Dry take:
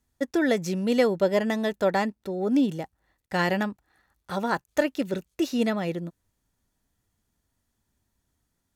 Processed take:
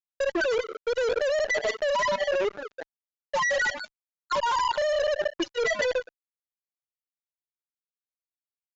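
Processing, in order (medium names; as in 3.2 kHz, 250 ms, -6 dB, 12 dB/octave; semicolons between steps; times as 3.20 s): feedback delay 205 ms, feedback 45%, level -17 dB; Schroeder reverb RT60 1.5 s, DRR 4 dB; gain riding within 3 dB 0.5 s; Bessel high-pass 1 kHz, order 2; band-stop 3.6 kHz, Q 8.1; comb 2 ms, depth 77%; loudest bins only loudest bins 2; fuzz box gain 42 dB, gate -44 dBFS; Chebyshev low-pass 7.2 kHz, order 8; level held to a coarse grid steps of 11 dB; trim -2.5 dB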